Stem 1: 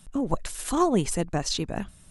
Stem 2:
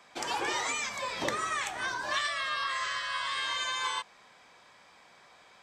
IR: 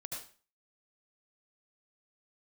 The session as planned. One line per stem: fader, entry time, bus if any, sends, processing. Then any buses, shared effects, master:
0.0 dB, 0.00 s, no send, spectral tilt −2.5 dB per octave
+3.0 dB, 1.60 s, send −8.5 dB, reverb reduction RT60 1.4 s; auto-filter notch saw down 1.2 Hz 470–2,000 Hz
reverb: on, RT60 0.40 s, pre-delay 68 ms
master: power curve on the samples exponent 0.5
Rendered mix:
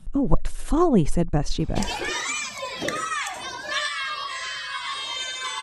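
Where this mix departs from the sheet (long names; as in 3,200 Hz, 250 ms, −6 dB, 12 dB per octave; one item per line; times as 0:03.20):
stem 2: send −8.5 dB → −1 dB
master: missing power curve on the samples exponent 0.5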